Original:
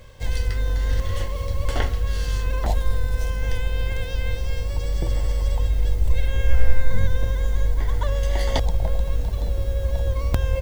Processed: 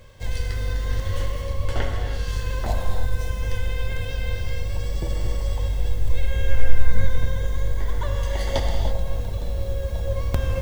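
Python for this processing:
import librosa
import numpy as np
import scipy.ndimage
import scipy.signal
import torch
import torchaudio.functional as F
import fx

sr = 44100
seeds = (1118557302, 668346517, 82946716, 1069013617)

y = fx.high_shelf(x, sr, hz=5500.0, db=-5.5, at=(1.41, 2.27))
y = fx.rev_gated(y, sr, seeds[0], gate_ms=350, shape='flat', drr_db=2.5)
y = F.gain(torch.from_numpy(y), -2.5).numpy()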